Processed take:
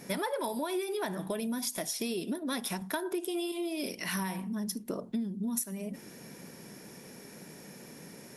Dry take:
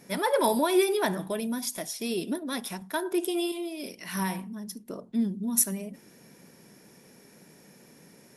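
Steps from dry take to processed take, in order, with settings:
downward compressor 12 to 1, threshold −36 dBFS, peak gain reduction 18.5 dB
level +5.5 dB

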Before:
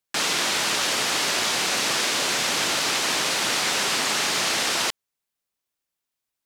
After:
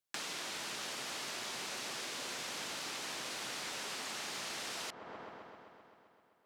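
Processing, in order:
on a send: delay with a low-pass on its return 130 ms, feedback 73%, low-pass 1,100 Hz, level −8.5 dB
on the sum: downward compressor 4 to 1, threshold −35 dBFS, peak gain reduction 12.5 dB
level −6.5 dB

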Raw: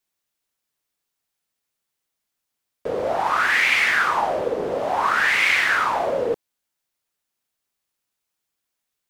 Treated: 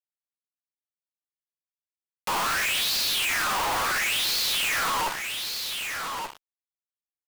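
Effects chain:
wrong playback speed 7.5 ips tape played at 15 ips
thirty-one-band graphic EQ 100 Hz +5 dB, 1,000 Hz −3 dB, 2,500 Hz +4 dB
phase-vocoder stretch with locked phases 1.6×
in parallel at −1 dB: brickwall limiter −18 dBFS, peak gain reduction 11 dB
on the sum: four-comb reverb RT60 1.2 s, combs from 30 ms, DRR 20 dB
fuzz pedal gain 37 dB, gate −39 dBFS
high-shelf EQ 7,400 Hz +5 dB
leveller curve on the samples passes 3
on a send: single-tap delay 1,180 ms −17 dB
on the sum: downward compressor, threshold −15 dBFS, peak gain reduction 6 dB
hard clipping −20 dBFS, distortion −14 dB
one half of a high-frequency compander encoder only
level −5.5 dB

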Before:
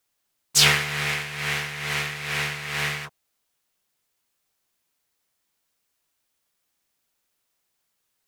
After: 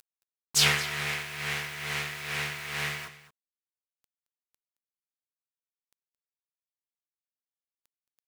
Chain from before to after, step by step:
upward compression, threshold −36 dBFS
bit reduction 7 bits
single-tap delay 221 ms −16 dB
level −5.5 dB

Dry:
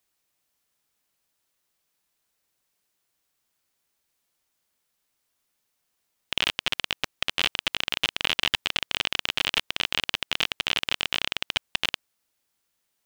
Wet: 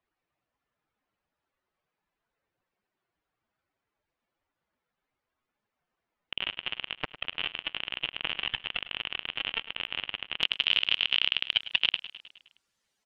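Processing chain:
expanding power law on the bin magnitudes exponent 2.1
low-pass filter 1,800 Hz 12 dB per octave, from 0:10.43 6,900 Hz
repeating echo 104 ms, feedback 60%, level −15 dB
level +1.5 dB

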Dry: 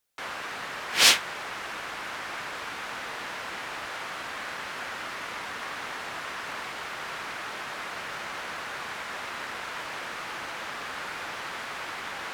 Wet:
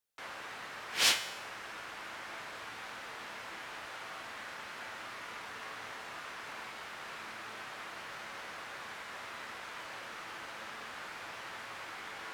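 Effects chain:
tuned comb filter 110 Hz, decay 0.94 s, harmonics all, mix 70%

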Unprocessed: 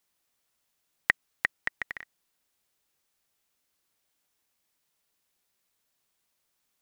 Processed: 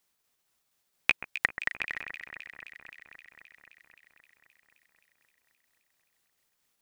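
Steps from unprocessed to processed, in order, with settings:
pitch shifter gated in a rhythm +4.5 semitones, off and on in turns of 118 ms
delay that swaps between a low-pass and a high-pass 131 ms, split 1,900 Hz, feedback 86%, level −10.5 dB
level +1.5 dB

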